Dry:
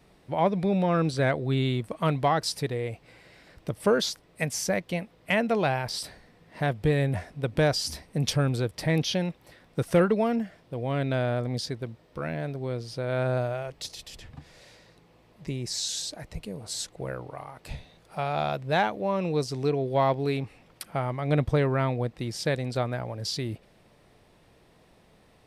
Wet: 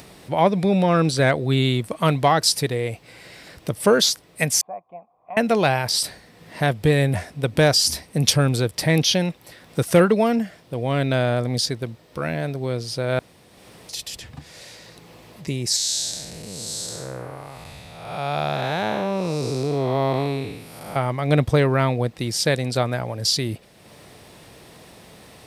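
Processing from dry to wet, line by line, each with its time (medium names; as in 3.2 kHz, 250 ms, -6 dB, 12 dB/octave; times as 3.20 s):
4.61–5.37 s: cascade formant filter a
13.19–13.89 s: room tone
15.76–20.96 s: spectral blur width 343 ms
whole clip: treble shelf 3.9 kHz +9 dB; upward compressor, threshold -43 dBFS; high-pass 63 Hz; trim +6 dB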